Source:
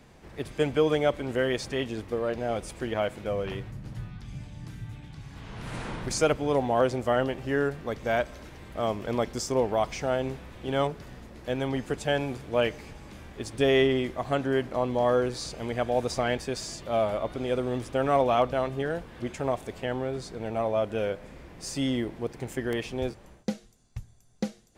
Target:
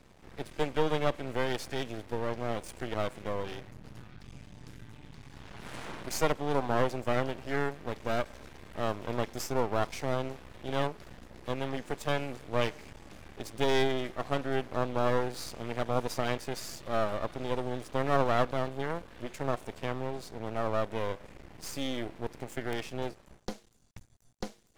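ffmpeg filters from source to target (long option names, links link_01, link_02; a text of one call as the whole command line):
ffmpeg -i in.wav -filter_complex "[0:a]acrossover=split=250[link_01][link_02];[link_01]acompressor=threshold=-43dB:ratio=6[link_03];[link_03][link_02]amix=inputs=2:normalize=0,aeval=exprs='max(val(0),0)':channel_layout=same" out.wav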